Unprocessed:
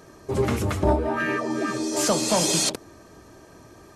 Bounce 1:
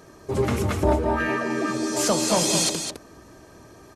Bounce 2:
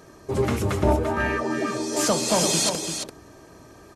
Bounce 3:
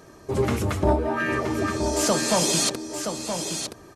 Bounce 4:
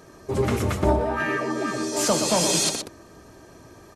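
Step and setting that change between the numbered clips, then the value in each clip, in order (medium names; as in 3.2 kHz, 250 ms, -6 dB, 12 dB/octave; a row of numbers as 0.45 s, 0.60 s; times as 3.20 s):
delay, time: 210 ms, 341 ms, 972 ms, 122 ms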